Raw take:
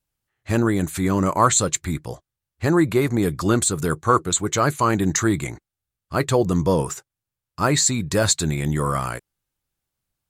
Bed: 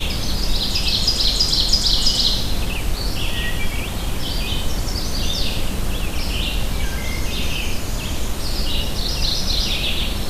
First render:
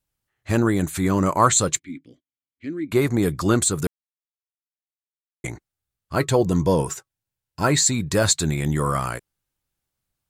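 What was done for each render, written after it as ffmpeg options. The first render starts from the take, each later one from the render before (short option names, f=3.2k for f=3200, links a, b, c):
-filter_complex "[0:a]asplit=3[a][b][c];[a]afade=t=out:st=1.78:d=0.02[d];[b]asplit=3[e][f][g];[e]bandpass=f=270:t=q:w=8,volume=0dB[h];[f]bandpass=f=2.29k:t=q:w=8,volume=-6dB[i];[g]bandpass=f=3.01k:t=q:w=8,volume=-9dB[j];[h][i][j]amix=inputs=3:normalize=0,afade=t=in:st=1.78:d=0.02,afade=t=out:st=2.91:d=0.02[k];[c]afade=t=in:st=2.91:d=0.02[l];[d][k][l]amix=inputs=3:normalize=0,asettb=1/sr,asplit=3[m][n][o];[m]atrim=end=6.154[p];[n]atrim=start=6.15:end=7.93,asetpts=PTS-STARTPTS,afade=t=in:d=0.004:c=qsin,afade=t=out:st=1.776:d=0.004:c=qsin,asuperstop=centerf=1200:order=20:qfactor=8[q];[o]atrim=start=7.926[r];[p][q]acrossfade=d=0.004:c1=hsin:c2=qsin[s];[s][r]acrossfade=d=0.004:c1=qsin:c2=hsin,asplit=3[t][u][v];[t]atrim=end=3.87,asetpts=PTS-STARTPTS,afade=t=out:st=3.866:d=0.004:c=hsin[w];[u]atrim=start=3.87:end=5.44,asetpts=PTS-STARTPTS,volume=0[x];[v]atrim=start=5.44,asetpts=PTS-STARTPTS,afade=t=in:d=0.004:c=hsin[y];[w][x][y]concat=n=3:v=0:a=1"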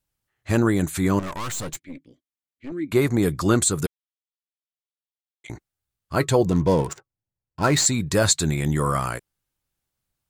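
-filter_complex "[0:a]asettb=1/sr,asplit=3[a][b][c];[a]atrim=end=1.194[d];[b]atrim=start=1.19:end=2.72,asetpts=PTS-STARTPTS,afade=t=in:d=0.004:c=qsin,afade=t=out:st=1.526:d=0.004:c=qsin,aeval=exprs='(tanh(28.2*val(0)+0.65)-tanh(0.65))/28.2':c=same[e];[c]atrim=start=2.716[f];[d][e]acrossfade=d=0.004:c1=hsin:c2=qsin[g];[g][f]acrossfade=d=0.004:c1=qsin:c2=hsin,asettb=1/sr,asplit=3[h][i][j];[h]atrim=end=3.864[k];[i]atrim=start=3.86:end=5.5,asetpts=PTS-STARTPTS,afade=t=in:d=0.004:c=qsin,afade=t=out:st=1.636:d=0.004:c=qsin,bandpass=f=3.4k:t=q:w=3[l];[j]atrim=start=5.496[m];[k][l]acrossfade=d=0.004:c1=hsin:c2=qsin[n];[n][m]acrossfade=d=0.004:c1=qsin:c2=hsin,asettb=1/sr,asplit=3[o][p][q];[o]atrim=end=6.504[r];[p]atrim=start=6.5:end=7.86,asetpts=PTS-STARTPTS,afade=t=in:d=0.004:c=qsin,afade=t=out:st=1.356:d=0.004:c=qsin,adynamicsmooth=sensitivity=7:basefreq=990[s];[q]atrim=start=7.856[t];[r][s]acrossfade=d=0.004:c1=hsin:c2=qsin[u];[u][t]acrossfade=d=0.004:c1=qsin:c2=hsin"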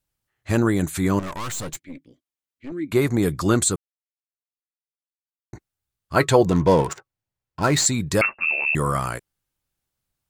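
-filter_complex "[0:a]asettb=1/sr,asplit=3[a][b][c];[a]atrim=end=6.154[d];[b]atrim=start=6.15:end=7.6,asetpts=PTS-STARTPTS,afade=t=in:d=0.004:c=qsin,afade=t=out:st=1.446:d=0.004:c=qsin,equalizer=f=1.4k:w=0.34:g=6[e];[c]atrim=start=7.596[f];[d][e]acrossfade=d=0.004:c1=hsin:c2=qsin[g];[g][f]acrossfade=d=0.004:c1=qsin:c2=hsin,asettb=1/sr,asplit=3[h][i][j];[h]atrim=end=8.214[k];[i]atrim=start=8.21:end=8.75,asetpts=PTS-STARTPTS,afade=t=in:d=0.004:c=qsin,afade=t=out:st=0.536:d=0.004:c=qsin,lowpass=f=2.4k:t=q:w=0.5098,lowpass=f=2.4k:t=q:w=0.6013,lowpass=f=2.4k:t=q:w=0.9,lowpass=f=2.4k:t=q:w=2.563,afreqshift=-2800[l];[j]atrim=start=8.746[m];[k][l]acrossfade=d=0.004:c1=hsin:c2=qsin[n];[n][m]acrossfade=d=0.004:c1=qsin:c2=hsin,asplit=3[o][p][q];[o]atrim=end=3.76,asetpts=PTS-STARTPTS,afade=t=out:st=3.756:d=0.004:c=hsin[r];[p]atrim=start=3.76:end=5.53,asetpts=PTS-STARTPTS,volume=0[s];[q]atrim=start=5.53,asetpts=PTS-STARTPTS,afade=t=in:d=0.004:c=hsin[t];[r][s][t]concat=n=3:v=0:a=1"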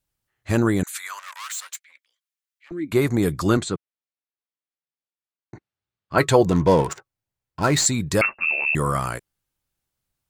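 -filter_complex "[0:a]asettb=1/sr,asplit=3[a][b][c];[a]atrim=end=0.834[d];[b]atrim=start=0.83:end=2.71,asetpts=PTS-STARTPTS,afade=t=in:d=0.004:c=qsin,afade=t=out:st=1.876:d=0.004:c=qsin,highpass=f=1.2k:w=0.5412,highpass=f=1.2k:w=1.3066[e];[c]atrim=start=2.706[f];[d][e]acrossfade=d=0.004:c1=hsin:c2=qsin[g];[g][f]acrossfade=d=0.004:c1=qsin:c2=hsin,asettb=1/sr,asplit=3[h][i][j];[h]atrim=end=3.574[k];[i]atrim=start=3.57:end=6.18,asetpts=PTS-STARTPTS,afade=t=in:d=0.004:c=qsin,afade=t=out:st=2.606:d=0.004:c=qsin,highpass=110,lowpass=3.8k[l];[j]atrim=start=6.176[m];[k][l]acrossfade=d=0.004:c1=hsin:c2=qsin[n];[n][m]acrossfade=d=0.004:c1=qsin:c2=hsin"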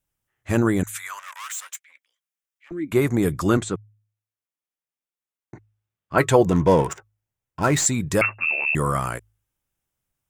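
-af "equalizer=f=4.3k:w=3.9:g=-9.5,bandreject=f=52.96:t=h:w=4,bandreject=f=105.92:t=h:w=4"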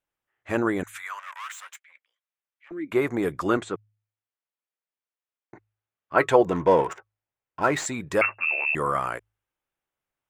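-af "bass=f=250:g=-14,treble=f=4k:g=-13"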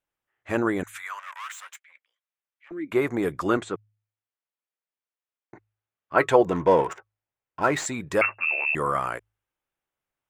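-af anull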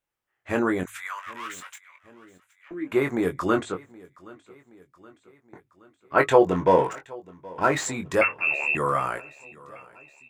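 -filter_complex "[0:a]asplit=2[a][b];[b]adelay=22,volume=-6.5dB[c];[a][c]amix=inputs=2:normalize=0,aecho=1:1:772|1544|2316|3088:0.075|0.042|0.0235|0.0132"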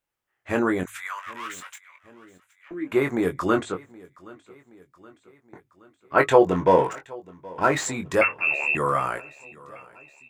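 -af "volume=1dB"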